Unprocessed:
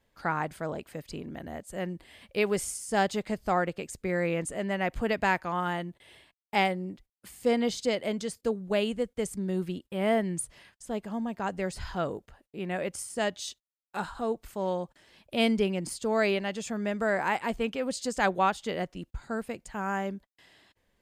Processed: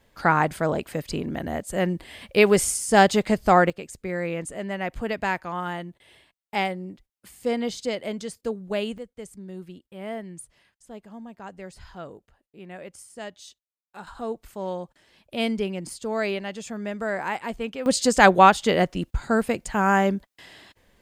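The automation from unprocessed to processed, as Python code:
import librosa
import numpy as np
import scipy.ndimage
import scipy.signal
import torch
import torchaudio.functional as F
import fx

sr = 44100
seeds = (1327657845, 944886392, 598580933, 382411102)

y = fx.gain(x, sr, db=fx.steps((0.0, 10.0), (3.7, 0.0), (8.98, -8.0), (14.07, -0.5), (17.86, 11.5)))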